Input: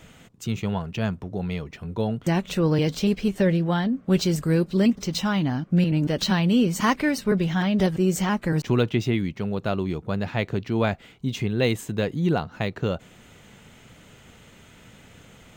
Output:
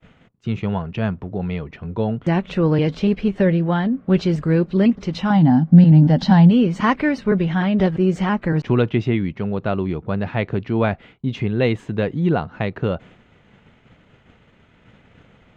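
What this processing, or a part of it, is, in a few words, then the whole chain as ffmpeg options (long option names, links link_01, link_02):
hearing-loss simulation: -filter_complex "[0:a]asettb=1/sr,asplit=3[link_01][link_02][link_03];[link_01]atrim=end=5.304[link_04];[link_02]atrim=start=5.3:end=6.51,asetpts=PTS-STARTPTS,afade=type=in:duration=0.004:curve=qsin,afade=type=out:start_time=1.206:duration=0.004:curve=qsin,equalizer=frequency=160:width_type=o:width=0.33:gain=10,equalizer=frequency=250:width_type=o:width=0.33:gain=11,equalizer=frequency=400:width_type=o:width=0.33:gain=-11,equalizer=frequency=800:width_type=o:width=0.33:gain=11,equalizer=frequency=1250:width_type=o:width=0.33:gain=-7,equalizer=frequency=2500:width_type=o:width=0.33:gain=-10,equalizer=frequency=5000:width_type=o:width=0.33:gain=6,equalizer=frequency=10000:width_type=o:width=0.33:gain=-5[link_05];[link_03]atrim=start=6.506[link_06];[link_04][link_05]acrossfade=duration=0.004:curve1=hsin:curve2=qsin[link_07];[link_07][link_06]acrossfade=duration=0.004:curve1=qsin:curve2=hsin,lowpass=2600,agate=range=-33dB:threshold=-44dB:ratio=3:detection=peak,volume=4dB"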